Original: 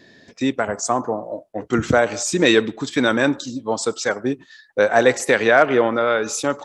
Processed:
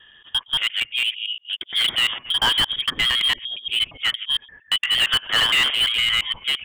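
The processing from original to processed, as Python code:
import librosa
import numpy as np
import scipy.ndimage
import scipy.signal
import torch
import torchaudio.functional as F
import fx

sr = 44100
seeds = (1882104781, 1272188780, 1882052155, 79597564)

y = fx.local_reverse(x, sr, ms=115.0)
y = fx.freq_invert(y, sr, carrier_hz=3500)
y = fx.slew_limit(y, sr, full_power_hz=470.0)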